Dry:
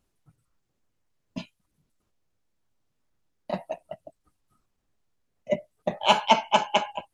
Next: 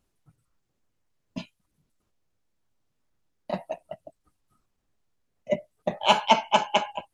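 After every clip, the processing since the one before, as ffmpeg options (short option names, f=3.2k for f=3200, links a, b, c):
-af anull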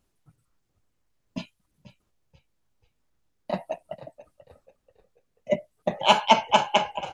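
-filter_complex "[0:a]asplit=4[a][b][c][d];[b]adelay=486,afreqshift=-53,volume=-16.5dB[e];[c]adelay=972,afreqshift=-106,volume=-24.9dB[f];[d]adelay=1458,afreqshift=-159,volume=-33.3dB[g];[a][e][f][g]amix=inputs=4:normalize=0,volume=1.5dB"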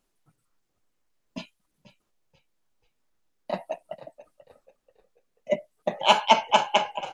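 -af "equalizer=f=77:t=o:w=1.9:g=-14"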